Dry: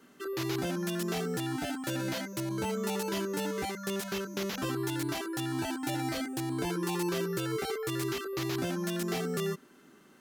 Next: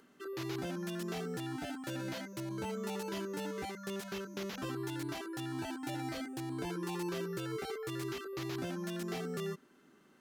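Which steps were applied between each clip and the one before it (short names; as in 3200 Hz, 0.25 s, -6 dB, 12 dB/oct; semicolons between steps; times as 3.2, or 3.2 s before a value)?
high shelf 6400 Hz -5.5 dB; upward compressor, threshold -56 dBFS; gain -6 dB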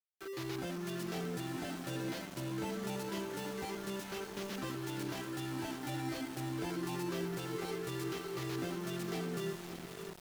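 diffused feedback echo 0.583 s, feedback 53%, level -7 dB; sample gate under -43.5 dBFS; gain -1 dB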